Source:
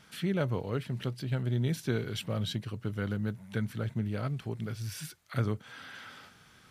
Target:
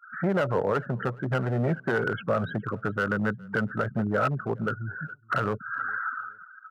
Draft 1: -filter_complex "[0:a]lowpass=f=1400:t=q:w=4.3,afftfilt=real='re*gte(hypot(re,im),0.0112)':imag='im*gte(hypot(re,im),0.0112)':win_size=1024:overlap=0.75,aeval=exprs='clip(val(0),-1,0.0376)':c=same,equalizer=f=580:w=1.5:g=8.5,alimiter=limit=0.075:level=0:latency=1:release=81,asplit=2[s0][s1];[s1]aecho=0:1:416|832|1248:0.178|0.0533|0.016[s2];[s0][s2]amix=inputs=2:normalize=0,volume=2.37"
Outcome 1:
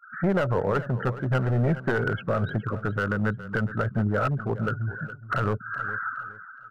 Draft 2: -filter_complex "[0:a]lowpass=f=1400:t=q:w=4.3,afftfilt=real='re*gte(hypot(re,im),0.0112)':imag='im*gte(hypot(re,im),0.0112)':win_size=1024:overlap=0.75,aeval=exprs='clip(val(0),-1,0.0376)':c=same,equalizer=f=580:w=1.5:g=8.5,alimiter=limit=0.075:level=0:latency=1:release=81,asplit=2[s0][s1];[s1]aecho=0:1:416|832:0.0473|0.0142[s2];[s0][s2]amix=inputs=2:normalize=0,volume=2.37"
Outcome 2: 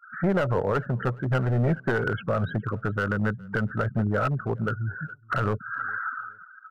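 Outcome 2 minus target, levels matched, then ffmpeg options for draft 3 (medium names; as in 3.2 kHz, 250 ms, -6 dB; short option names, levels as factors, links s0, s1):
125 Hz band +3.0 dB
-filter_complex "[0:a]lowpass=f=1400:t=q:w=4.3,afftfilt=real='re*gte(hypot(re,im),0.0112)':imag='im*gte(hypot(re,im),0.0112)':win_size=1024:overlap=0.75,aeval=exprs='clip(val(0),-1,0.0376)':c=same,highpass=140,equalizer=f=580:w=1.5:g=8.5,alimiter=limit=0.075:level=0:latency=1:release=81,asplit=2[s0][s1];[s1]aecho=0:1:416|832:0.0473|0.0142[s2];[s0][s2]amix=inputs=2:normalize=0,volume=2.37"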